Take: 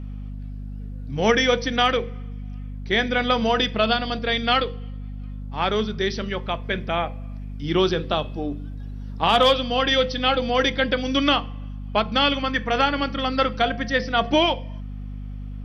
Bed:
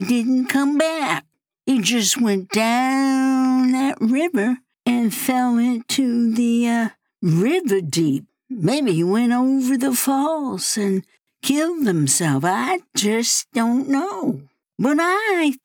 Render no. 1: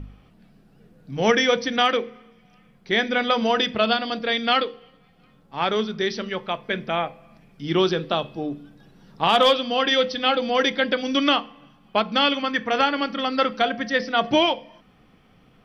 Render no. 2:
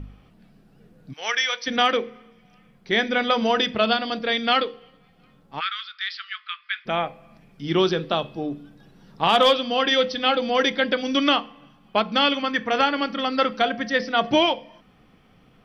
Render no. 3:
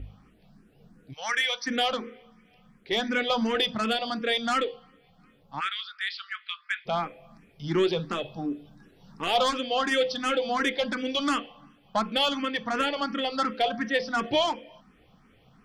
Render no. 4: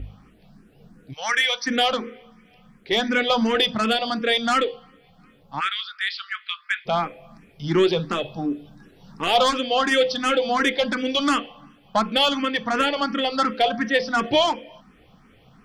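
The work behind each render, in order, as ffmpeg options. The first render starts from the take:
ffmpeg -i in.wav -af "bandreject=frequency=50:width_type=h:width=4,bandreject=frequency=100:width_type=h:width=4,bandreject=frequency=150:width_type=h:width=4,bandreject=frequency=200:width_type=h:width=4,bandreject=frequency=250:width_type=h:width=4" out.wav
ffmpeg -i in.wav -filter_complex "[0:a]asplit=3[link_01][link_02][link_03];[link_01]afade=type=out:start_time=1.12:duration=0.02[link_04];[link_02]highpass=1300,afade=type=in:start_time=1.12:duration=0.02,afade=type=out:start_time=1.66:duration=0.02[link_05];[link_03]afade=type=in:start_time=1.66:duration=0.02[link_06];[link_04][link_05][link_06]amix=inputs=3:normalize=0,asplit=3[link_07][link_08][link_09];[link_07]afade=type=out:start_time=5.59:duration=0.02[link_10];[link_08]asuperpass=centerf=2500:order=20:qfactor=0.63,afade=type=in:start_time=5.59:duration=0.02,afade=type=out:start_time=6.85:duration=0.02[link_11];[link_09]afade=type=in:start_time=6.85:duration=0.02[link_12];[link_10][link_11][link_12]amix=inputs=3:normalize=0" out.wav
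ffmpeg -i in.wav -filter_complex "[0:a]asoftclip=type=tanh:threshold=-15.5dB,asplit=2[link_01][link_02];[link_02]afreqshift=2.8[link_03];[link_01][link_03]amix=inputs=2:normalize=1" out.wav
ffmpeg -i in.wav -af "volume=5.5dB" out.wav

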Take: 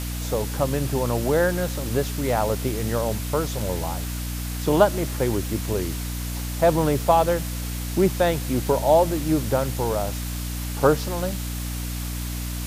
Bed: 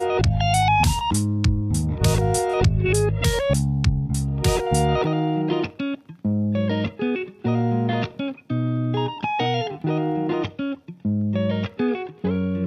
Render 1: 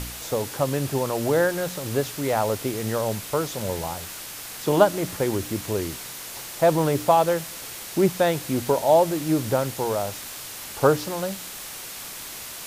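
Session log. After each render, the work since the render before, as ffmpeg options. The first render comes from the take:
ffmpeg -i in.wav -af "bandreject=frequency=60:width_type=h:width=4,bandreject=frequency=120:width_type=h:width=4,bandreject=frequency=180:width_type=h:width=4,bandreject=frequency=240:width_type=h:width=4,bandreject=frequency=300:width_type=h:width=4" out.wav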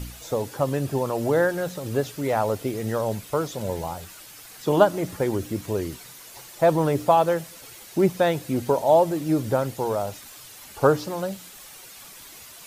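ffmpeg -i in.wav -af "afftdn=noise_reduction=10:noise_floor=-37" out.wav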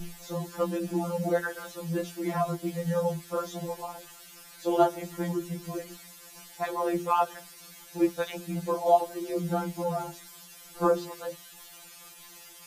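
ffmpeg -i in.wav -af "aeval=exprs='val(0)*sin(2*PI*51*n/s)':channel_layout=same,afftfilt=real='re*2.83*eq(mod(b,8),0)':imag='im*2.83*eq(mod(b,8),0)':win_size=2048:overlap=0.75" out.wav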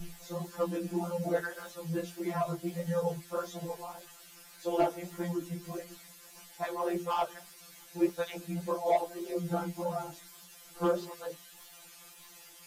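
ffmpeg -i in.wav -filter_complex "[0:a]acrossover=split=650[link_01][link_02];[link_02]asoftclip=type=hard:threshold=-25.5dB[link_03];[link_01][link_03]amix=inputs=2:normalize=0,flanger=delay=1.5:depth=9.7:regen=-48:speed=1.7:shape=sinusoidal" out.wav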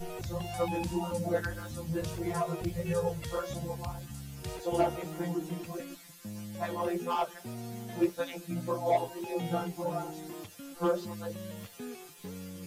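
ffmpeg -i in.wav -i bed.wav -filter_complex "[1:a]volume=-20dB[link_01];[0:a][link_01]amix=inputs=2:normalize=0" out.wav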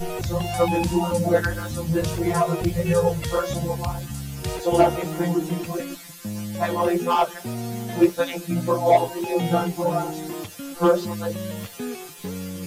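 ffmpeg -i in.wav -af "volume=11dB" out.wav

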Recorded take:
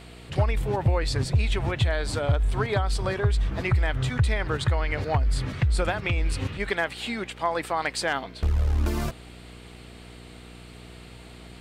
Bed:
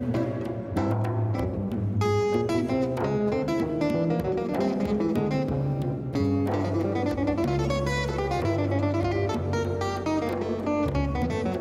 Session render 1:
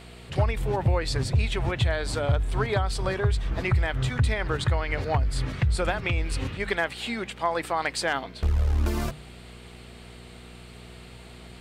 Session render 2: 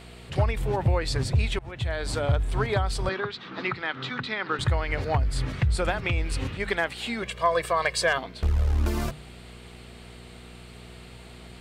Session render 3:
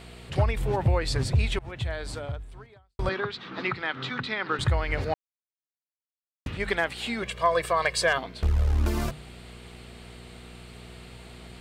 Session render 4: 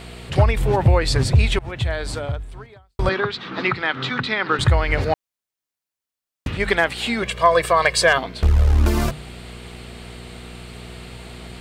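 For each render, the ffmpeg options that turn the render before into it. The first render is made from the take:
ffmpeg -i in.wav -af "bandreject=frequency=50:width_type=h:width=4,bandreject=frequency=100:width_type=h:width=4,bandreject=frequency=150:width_type=h:width=4,bandreject=frequency=200:width_type=h:width=4,bandreject=frequency=250:width_type=h:width=4,bandreject=frequency=300:width_type=h:width=4" out.wav
ffmpeg -i in.wav -filter_complex "[0:a]asettb=1/sr,asplit=3[link_01][link_02][link_03];[link_01]atrim=end=3.094[link_04];[link_02]atrim=start=3.09:end=4.59,asetpts=PTS-STARTPTS,afade=type=in:duration=0.004:curve=qsin,afade=type=out:start_time=1.496:duration=0.004:curve=qsin,highpass=frequency=190:width=0.5412,highpass=frequency=190:width=1.3066,equalizer=frequency=440:width_type=q:width=4:gain=-3,equalizer=frequency=640:width_type=q:width=4:gain=-7,equalizer=frequency=1300:width_type=q:width=4:gain=6,equalizer=frequency=3900:width_type=q:width=4:gain=5,lowpass=frequency=5000:width=0.5412,lowpass=frequency=5000:width=1.3066[link_05];[link_03]atrim=start=4.586[link_06];[link_04][link_05]acrossfade=duration=0.004:curve1=hsin:curve2=qsin[link_07];[link_07][link_06]acrossfade=duration=0.004:curve1=qsin:curve2=hsin,asettb=1/sr,asplit=3[link_08][link_09][link_10];[link_08]atrim=end=7.224[link_11];[link_09]atrim=start=7.22:end=8.18,asetpts=PTS-STARTPTS,afade=type=in:duration=0.004:curve=qsin,afade=type=out:start_time=0.956:duration=0.004:curve=qsin,aecho=1:1:1.8:0.88,atrim=end_sample=42336[link_12];[link_10]atrim=start=8.176[link_13];[link_11][link_12]acrossfade=duration=0.004:curve1=hsin:curve2=qsin[link_14];[link_14][link_13]acrossfade=duration=0.004:curve1=qsin:curve2=hsin,asplit=2[link_15][link_16];[link_15]atrim=end=1.59,asetpts=PTS-STARTPTS,afade=type=out:start_time=1.586:duration=0.004:curve=hsin:silence=0.0707946[link_17];[link_16]atrim=start=1.59,asetpts=PTS-STARTPTS,afade=type=in:duration=0.51:silence=0.0707946[link_18];[link_17][link_18]concat=n=2:v=0:a=1" out.wav
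ffmpeg -i in.wav -filter_complex "[0:a]asplit=4[link_01][link_02][link_03][link_04];[link_01]atrim=end=2.99,asetpts=PTS-STARTPTS,afade=type=out:start_time=1.74:duration=1.25:curve=qua[link_05];[link_02]atrim=start=2.99:end=5.14,asetpts=PTS-STARTPTS,afade=type=in:duration=0.004:curve=hsin,afade=type=out:start_time=2.146:duration=0.004:curve=hsin[link_06];[link_03]atrim=start=5.14:end=6.46,asetpts=PTS-STARTPTS,volume=0[link_07];[link_04]atrim=start=6.46,asetpts=PTS-STARTPTS,afade=type=in:duration=0.004:curve=hsin[link_08];[link_05][link_06][link_07][link_08]concat=n=4:v=0:a=1" out.wav
ffmpeg -i in.wav -af "volume=8dB" out.wav

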